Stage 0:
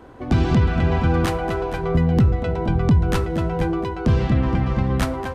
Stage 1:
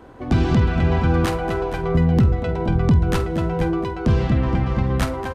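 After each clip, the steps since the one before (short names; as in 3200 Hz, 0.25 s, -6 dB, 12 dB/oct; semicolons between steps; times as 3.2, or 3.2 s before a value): doubler 48 ms -13.5 dB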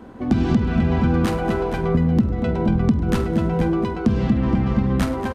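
bell 220 Hz +13.5 dB 0.44 oct; compressor, threshold -14 dBFS, peak gain reduction 10.5 dB; frequency-shifting echo 0.102 s, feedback 60%, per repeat +54 Hz, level -19 dB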